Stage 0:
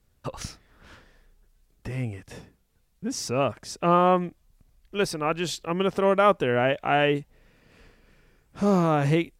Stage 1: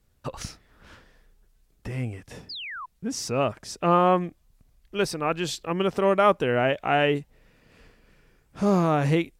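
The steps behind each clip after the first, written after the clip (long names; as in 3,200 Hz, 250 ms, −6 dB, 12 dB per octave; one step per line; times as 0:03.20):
sound drawn into the spectrogram fall, 0:02.49–0:02.86, 950–5,200 Hz −36 dBFS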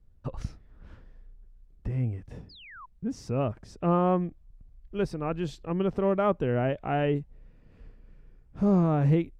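spectral tilt −3.5 dB per octave
level −8 dB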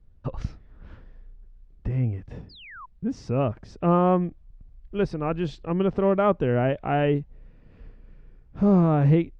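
low-pass filter 4,700 Hz 12 dB per octave
level +4 dB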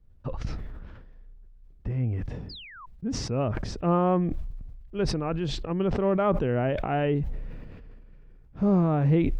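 level that may fall only so fast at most 32 dB per second
level −3.5 dB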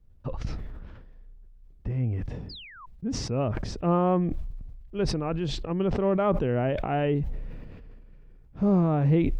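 parametric band 1,500 Hz −2 dB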